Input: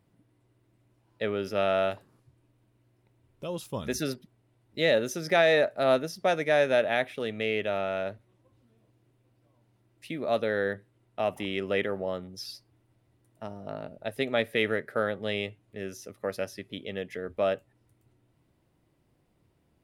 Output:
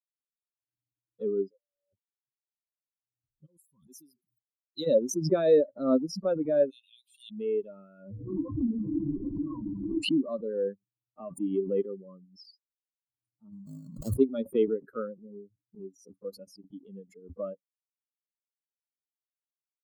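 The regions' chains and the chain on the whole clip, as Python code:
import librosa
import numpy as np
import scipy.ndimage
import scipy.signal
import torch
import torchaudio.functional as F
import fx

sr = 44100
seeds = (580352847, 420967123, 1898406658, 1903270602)

y = fx.chain(x, sr, fx.over_compress(threshold_db=-36.0, ratio=-1.0),
    fx.formant_cascade(vowel='e'),
    fx.air_absorb(metres=180.0), at=(1.49, 1.93))
y = fx.chain(y, sr, fx.pre_emphasis(coefficient=0.8),
    fx.sustainer(db_per_s=93.0), at=(3.46, 4.87))
y = fx.chain(y, sr, fx.steep_highpass(hz=2600.0, slope=48),
    fx.high_shelf(hz=4100.0, db=7.0), at=(6.7, 7.31))
y = fx.chain(y, sr, fx.lowpass(hz=2900.0, slope=6),
    fx.hum_notches(base_hz=60, count=10),
    fx.env_flatten(amount_pct=100), at=(8.04, 10.21))
y = fx.chain(y, sr, fx.halfwave_hold(),
    fx.sustainer(db_per_s=30.0), at=(13.52, 14.14))
y = fx.chain(y, sr, fx.median_filter(points=41),
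    fx.ellip_bandpass(low_hz=110.0, high_hz=850.0, order=3, stop_db=40), at=(15.19, 15.8))
y = fx.bin_expand(y, sr, power=3.0)
y = fx.curve_eq(y, sr, hz=(110.0, 190.0, 280.0, 550.0, 790.0, 1200.0, 2000.0, 2800.0, 5300.0), db=(0, 3, 12, 4, -19, -3, -26, -17, -12))
y = fx.pre_swell(y, sr, db_per_s=98.0)
y = y * librosa.db_to_amplitude(3.0)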